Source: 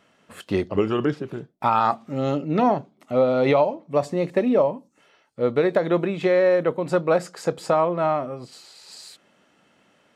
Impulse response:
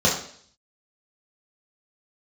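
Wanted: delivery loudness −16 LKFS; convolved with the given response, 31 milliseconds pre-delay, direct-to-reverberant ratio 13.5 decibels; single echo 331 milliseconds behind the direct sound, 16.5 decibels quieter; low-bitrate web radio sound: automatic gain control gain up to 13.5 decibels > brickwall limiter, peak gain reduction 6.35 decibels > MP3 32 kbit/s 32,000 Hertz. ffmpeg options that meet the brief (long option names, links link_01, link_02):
-filter_complex "[0:a]aecho=1:1:331:0.15,asplit=2[link_01][link_02];[1:a]atrim=start_sample=2205,adelay=31[link_03];[link_02][link_03]afir=irnorm=-1:irlink=0,volume=-31dB[link_04];[link_01][link_04]amix=inputs=2:normalize=0,dynaudnorm=maxgain=13.5dB,alimiter=limit=-13dB:level=0:latency=1,volume=8.5dB" -ar 32000 -c:a libmp3lame -b:a 32k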